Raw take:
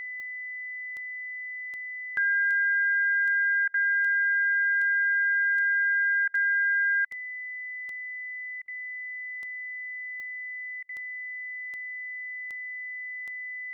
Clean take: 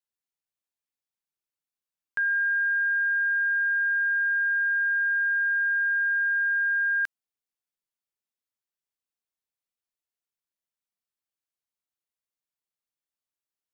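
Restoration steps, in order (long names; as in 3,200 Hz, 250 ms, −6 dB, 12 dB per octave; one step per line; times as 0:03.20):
click removal
notch filter 2,000 Hz, Q 30
repair the gap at 0:03.68/0:06.28/0:07.05/0:08.62/0:10.83, 59 ms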